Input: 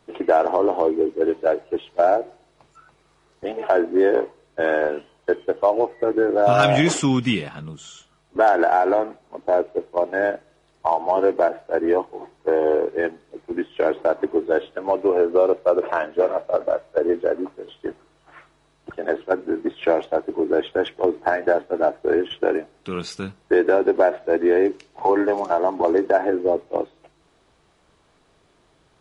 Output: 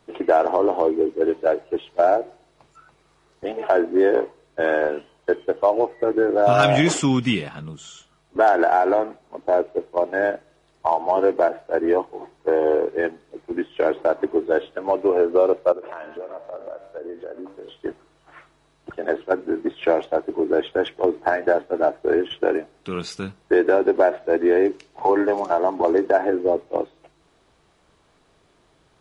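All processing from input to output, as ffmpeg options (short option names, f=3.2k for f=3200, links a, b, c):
-filter_complex "[0:a]asettb=1/sr,asplit=3[a][b][c];[a]atrim=end=15.724[d];[b]atrim=start=15.72:end=17.76,asetpts=PTS-STARTPTS,afade=t=in:d=0.004:c=qsin,afade=t=out:st=2.036:d=0.004:c=qsin,bandreject=f=97.73:t=h:w=4,bandreject=f=195.46:t=h:w=4,bandreject=f=293.19:t=h:w=4,bandreject=f=390.92:t=h:w=4,bandreject=f=488.65:t=h:w=4,bandreject=f=586.38:t=h:w=4,bandreject=f=684.11:t=h:w=4,bandreject=f=781.84:t=h:w=4,bandreject=f=879.57:t=h:w=4,bandreject=f=977.3:t=h:w=4,bandreject=f=1.07503k:t=h:w=4,bandreject=f=1.17276k:t=h:w=4,bandreject=f=1.27049k:t=h:w=4,bandreject=f=1.36822k:t=h:w=4,bandreject=f=1.46595k:t=h:w=4,bandreject=f=1.56368k:t=h:w=4,bandreject=f=1.66141k:t=h:w=4,bandreject=f=1.75914k:t=h:w=4,bandreject=f=1.85687k:t=h:w=4,bandreject=f=1.9546k:t=h:w=4,bandreject=f=2.05233k:t=h:w=4,bandreject=f=2.15006k:t=h:w=4,bandreject=f=2.24779k:t=h:w=4,bandreject=f=2.34552k:t=h:w=4,bandreject=f=2.44325k:t=h:w=4,bandreject=f=2.54098k:t=h:w=4,bandreject=f=2.63871k:t=h:w=4,bandreject=f=2.73644k:t=h:w=4,bandreject=f=2.83417k:t=h:w=4,bandreject=f=2.9319k:t=h:w=4,bandreject=f=3.02963k:t=h:w=4,bandreject=f=3.12736k:t=h:w=4,bandreject=f=3.22509k:t=h:w=4,bandreject=f=3.32282k:t=h:w=4,bandreject=f=3.42055k:t=h:w=4,bandreject=f=3.51828k:t=h:w=4,bandreject=f=3.61601k:t=h:w=4,bandreject=f=3.71374k:t=h:w=4,bandreject=f=3.81147k:t=h:w=4,bandreject=f=3.9092k:t=h:w=4,acompressor=threshold=-32dB:ratio=4:attack=3.2:release=140:knee=1:detection=peak[e];[c]atrim=start=17.756[f];[d][e]acrossfade=d=0.004:c1=hsin:c2=qsin[g];[g][f]acrossfade=d=0.004:c1=qsin:c2=hsin"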